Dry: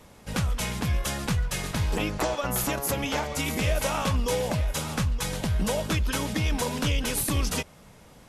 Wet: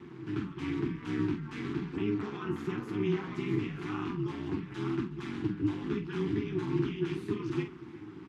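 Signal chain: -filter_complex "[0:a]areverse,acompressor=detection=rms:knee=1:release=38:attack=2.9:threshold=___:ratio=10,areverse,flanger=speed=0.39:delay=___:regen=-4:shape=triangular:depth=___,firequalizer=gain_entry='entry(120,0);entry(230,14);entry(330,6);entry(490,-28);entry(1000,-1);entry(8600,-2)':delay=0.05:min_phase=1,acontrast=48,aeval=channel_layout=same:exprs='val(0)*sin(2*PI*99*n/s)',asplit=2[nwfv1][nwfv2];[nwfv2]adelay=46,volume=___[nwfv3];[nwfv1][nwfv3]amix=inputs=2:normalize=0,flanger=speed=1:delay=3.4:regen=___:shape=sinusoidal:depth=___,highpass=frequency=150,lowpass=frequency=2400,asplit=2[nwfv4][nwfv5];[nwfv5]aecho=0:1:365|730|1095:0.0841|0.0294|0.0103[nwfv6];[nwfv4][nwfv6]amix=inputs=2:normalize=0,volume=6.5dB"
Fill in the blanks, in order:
-35dB, 7, 8.6, -8dB, -77, 5.6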